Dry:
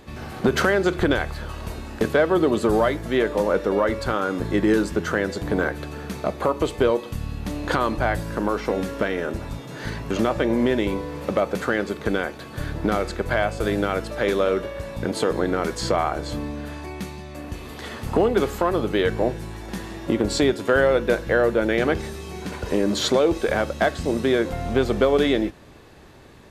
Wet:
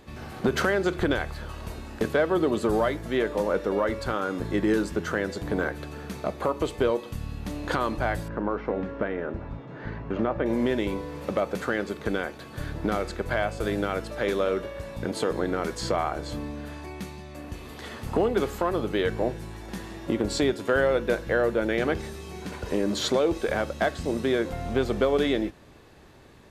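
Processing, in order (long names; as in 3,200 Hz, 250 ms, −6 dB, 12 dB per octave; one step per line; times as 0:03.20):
0:08.28–0:10.46: low-pass filter 1,800 Hz 12 dB per octave
level −4.5 dB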